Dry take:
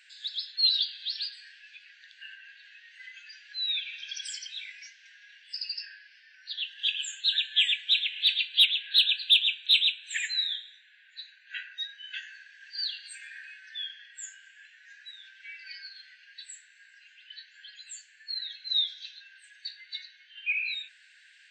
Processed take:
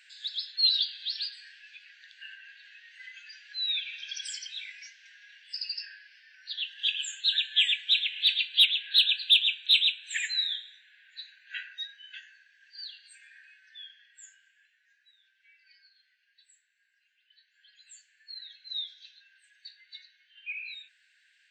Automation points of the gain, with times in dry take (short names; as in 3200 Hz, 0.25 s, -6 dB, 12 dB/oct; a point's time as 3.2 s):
11.65 s 0 dB
12.36 s -9.5 dB
14.31 s -9.5 dB
15.01 s -17.5 dB
17.35 s -17.5 dB
17.91 s -8.5 dB